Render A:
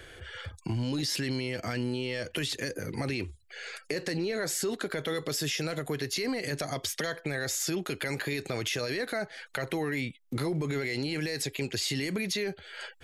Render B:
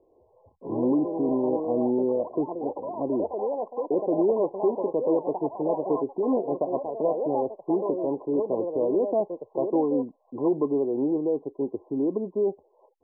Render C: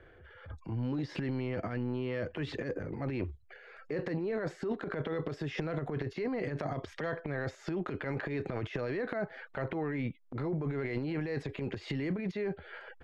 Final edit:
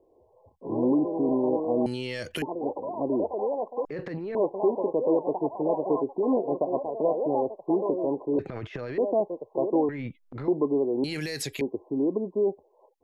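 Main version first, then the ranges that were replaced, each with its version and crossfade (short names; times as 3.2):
B
1.86–2.42 from A
3.85–4.35 from C
8.39–8.98 from C
9.89–10.48 from C
11.04–11.61 from A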